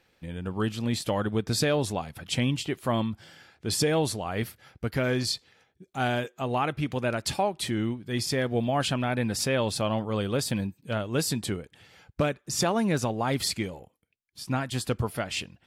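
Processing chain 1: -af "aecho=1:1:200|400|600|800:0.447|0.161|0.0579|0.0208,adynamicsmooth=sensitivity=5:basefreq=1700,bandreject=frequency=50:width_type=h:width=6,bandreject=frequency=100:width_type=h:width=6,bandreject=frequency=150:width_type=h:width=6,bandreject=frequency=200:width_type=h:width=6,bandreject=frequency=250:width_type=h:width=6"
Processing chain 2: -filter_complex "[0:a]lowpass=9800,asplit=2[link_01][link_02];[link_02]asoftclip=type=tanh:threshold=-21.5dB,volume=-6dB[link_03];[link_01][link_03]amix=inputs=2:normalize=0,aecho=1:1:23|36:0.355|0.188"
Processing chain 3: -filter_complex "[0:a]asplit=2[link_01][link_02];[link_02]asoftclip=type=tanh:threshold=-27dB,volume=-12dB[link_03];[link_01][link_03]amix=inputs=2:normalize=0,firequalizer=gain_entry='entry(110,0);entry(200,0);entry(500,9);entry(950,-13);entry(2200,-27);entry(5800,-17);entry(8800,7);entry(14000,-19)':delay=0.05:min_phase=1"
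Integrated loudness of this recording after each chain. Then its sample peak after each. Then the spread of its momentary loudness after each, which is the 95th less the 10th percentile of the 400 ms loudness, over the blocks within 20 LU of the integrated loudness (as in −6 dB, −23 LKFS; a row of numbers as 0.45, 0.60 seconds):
−29.0, −25.0, −25.0 LKFS; −12.5, −10.0, −9.0 dBFS; 9, 8, 10 LU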